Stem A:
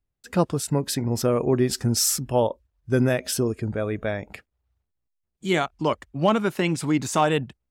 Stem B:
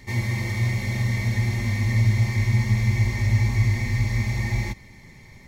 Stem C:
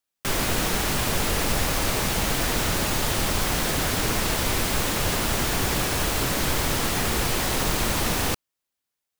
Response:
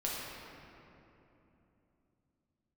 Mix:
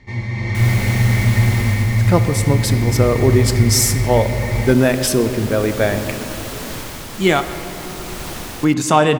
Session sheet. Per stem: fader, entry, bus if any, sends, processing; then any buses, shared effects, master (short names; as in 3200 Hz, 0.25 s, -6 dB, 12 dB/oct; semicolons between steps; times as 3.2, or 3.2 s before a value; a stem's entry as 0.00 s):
0.0 dB, 1.75 s, muted 7.47–8.63, send -11 dB, no echo send, notches 60/120 Hz
0.0 dB, 0.00 s, no send, no echo send, Bessel low-pass 3200 Hz, order 2
-14.0 dB, 0.30 s, no send, echo send -6.5 dB, dry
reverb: on, RT60 3.1 s, pre-delay 6 ms
echo: echo 91 ms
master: AGC gain up to 9.5 dB